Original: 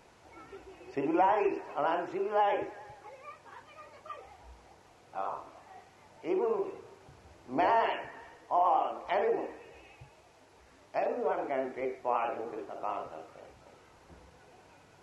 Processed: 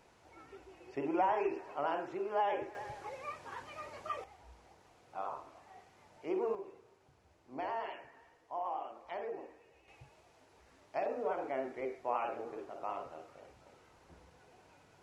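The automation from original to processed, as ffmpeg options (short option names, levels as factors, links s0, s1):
-af "asetnsamples=n=441:p=0,asendcmd='2.75 volume volume 4.5dB;4.24 volume volume -4.5dB;6.55 volume volume -12dB;9.88 volume volume -4.5dB',volume=0.562"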